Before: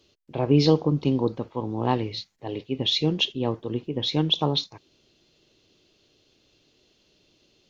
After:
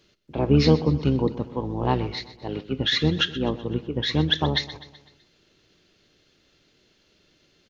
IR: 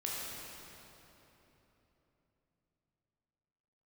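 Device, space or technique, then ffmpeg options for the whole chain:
octave pedal: -filter_complex "[0:a]asplit=2[a][b];[b]asetrate=22050,aresample=44100,atempo=2,volume=-6dB[c];[a][c]amix=inputs=2:normalize=0,aecho=1:1:126|252|378|504|630:0.158|0.0808|0.0412|0.021|0.0107"

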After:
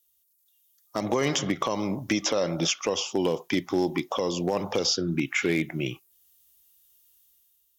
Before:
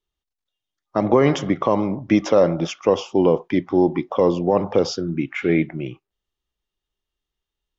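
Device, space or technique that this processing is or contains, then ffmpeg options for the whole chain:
FM broadcast chain: -filter_complex "[0:a]highpass=43,dynaudnorm=f=150:g=7:m=7dB,acrossover=split=2100|4500[a][b][c];[a]acompressor=threshold=-14dB:ratio=4[d];[b]acompressor=threshold=-33dB:ratio=4[e];[c]acompressor=threshold=-48dB:ratio=4[f];[d][e][f]amix=inputs=3:normalize=0,aemphasis=mode=production:type=75fm,alimiter=limit=-10dB:level=0:latency=1:release=467,asoftclip=type=hard:threshold=-12dB,lowpass=f=15k:w=0.5412,lowpass=f=15k:w=1.3066,aemphasis=mode=production:type=75fm,volume=-3.5dB"

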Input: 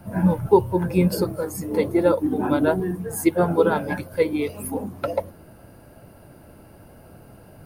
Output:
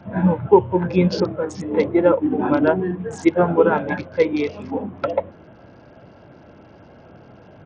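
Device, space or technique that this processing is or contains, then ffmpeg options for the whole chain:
Bluetooth headset: -af "highpass=f=140:p=1,aresample=16000,aresample=44100,volume=3.5dB" -ar 48000 -c:a sbc -b:a 64k

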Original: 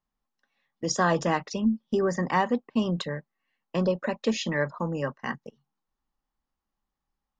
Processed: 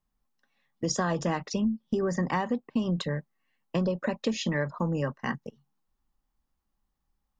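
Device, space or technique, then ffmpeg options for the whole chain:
ASMR close-microphone chain: -af "lowshelf=f=220:g=8,acompressor=threshold=-24dB:ratio=6,highshelf=f=7.5k:g=4"

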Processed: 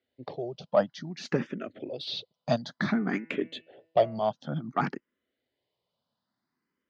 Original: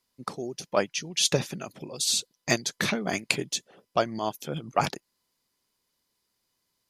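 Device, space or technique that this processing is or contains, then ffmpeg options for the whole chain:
barber-pole phaser into a guitar amplifier: -filter_complex "[0:a]asplit=2[a][b];[b]afreqshift=0.56[c];[a][c]amix=inputs=2:normalize=1,asoftclip=type=tanh:threshold=-17dB,highpass=86,equalizer=f=250:t=q:w=4:g=4,equalizer=f=620:t=q:w=4:g=5,equalizer=f=1k:t=q:w=4:g=-5,equalizer=f=2.5k:t=q:w=4:g=-7,lowpass=f=3.7k:w=0.5412,lowpass=f=3.7k:w=1.3066,asettb=1/sr,asplit=3[d][e][f];[d]atrim=end=2.824[g];[e]atrim=start=2.82:end=4.23,asetpts=PTS-STARTPTS,afade=t=in:d=0.004:c=qsin,afade=t=out:st=1.406:d=0.004:c=qsin,bandreject=f=163:t=h:w=4,bandreject=f=326:t=h:w=4,bandreject=f=489:t=h:w=4,bandreject=f=652:t=h:w=4,bandreject=f=815:t=h:w=4,bandreject=f=978:t=h:w=4,bandreject=f=1.141k:t=h:w=4,bandreject=f=1.304k:t=h:w=4,bandreject=f=1.467k:t=h:w=4,bandreject=f=1.63k:t=h:w=4,bandreject=f=1.793k:t=h:w=4,bandreject=f=1.956k:t=h:w=4,bandreject=f=2.119k:t=h:w=4,bandreject=f=2.282k:t=h:w=4,bandreject=f=2.445k:t=h:w=4,bandreject=f=2.608k:t=h:w=4,bandreject=f=2.771k:t=h:w=4,bandreject=f=2.934k:t=h:w=4[h];[f]atrim=start=4.226[i];[g][h]acrossfade=d=0.004:c1=hsin:c2=qsin[j];[j][i]acrossfade=d=0.004:c1=qsin:c2=hsin,equalizer=f=11k:t=o:w=2.3:g=-5.5,volume=3dB"

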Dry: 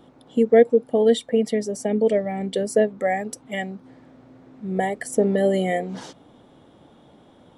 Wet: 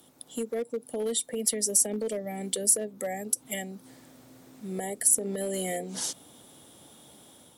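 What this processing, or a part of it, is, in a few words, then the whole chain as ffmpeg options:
FM broadcast chain: -filter_complex "[0:a]highpass=f=56:w=0.5412,highpass=f=56:w=1.3066,dynaudnorm=f=130:g=5:m=5dB,acrossover=split=190|590[a][b][c];[a]acompressor=threshold=-38dB:ratio=4[d];[b]acompressor=threshold=-18dB:ratio=4[e];[c]acompressor=threshold=-33dB:ratio=4[f];[d][e][f]amix=inputs=3:normalize=0,aemphasis=mode=production:type=75fm,alimiter=limit=-13.5dB:level=0:latency=1:release=92,asoftclip=type=hard:threshold=-15.5dB,lowpass=f=15k:w=0.5412,lowpass=f=15k:w=1.3066,aemphasis=mode=production:type=75fm,volume=-8.5dB"

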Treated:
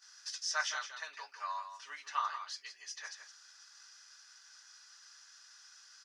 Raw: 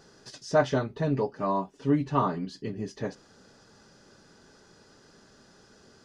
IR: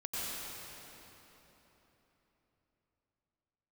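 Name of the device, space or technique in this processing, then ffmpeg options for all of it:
headphones lying on a table: -af "highpass=f=1.3k:w=0.5412,highpass=f=1.3k:w=1.3066,equalizer=f=5.7k:t=o:w=0.44:g=8,agate=range=-10dB:threshold=-59dB:ratio=16:detection=peak,aecho=1:1:166:0.335"

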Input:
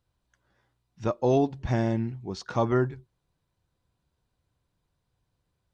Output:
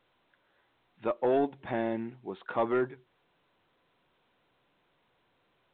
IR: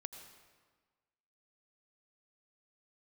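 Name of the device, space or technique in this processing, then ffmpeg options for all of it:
telephone: -af "highpass=310,lowpass=3.4k,asoftclip=type=tanh:threshold=-18dB" -ar 8000 -c:a pcm_alaw

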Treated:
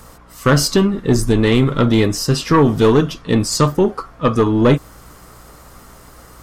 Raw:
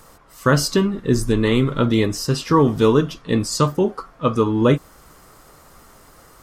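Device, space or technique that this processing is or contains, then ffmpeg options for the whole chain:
valve amplifier with mains hum: -af "aeval=exprs='(tanh(3.16*val(0)+0.25)-tanh(0.25))/3.16':c=same,aeval=exprs='val(0)+0.00282*(sin(2*PI*60*n/s)+sin(2*PI*2*60*n/s)/2+sin(2*PI*3*60*n/s)/3+sin(2*PI*4*60*n/s)/4+sin(2*PI*5*60*n/s)/5)':c=same,volume=5.5dB"

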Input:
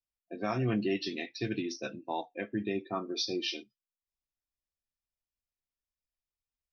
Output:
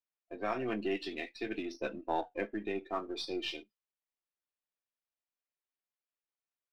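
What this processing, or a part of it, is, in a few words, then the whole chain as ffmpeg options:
crystal radio: -filter_complex "[0:a]asettb=1/sr,asplit=3[a][b][c];[a]atrim=end=1.744[d];[b]atrim=start=1.74:end=2.51,asetpts=PTS-STARTPTS,afade=t=in:d=0.004:c=qsin,afade=t=out:st=0.766:d=0.004:c=qsin,lowshelf=f=460:g=8.5[e];[c]atrim=start=2.506[f];[d][e]acrossfade=d=0.004:c1=hsin:c2=qsin[g];[g][f]acrossfade=d=0.004:c1=qsin:c2=hsin,highpass=330,lowpass=3.1k,aeval=exprs='if(lt(val(0),0),0.708*val(0),val(0))':c=same,volume=1dB"

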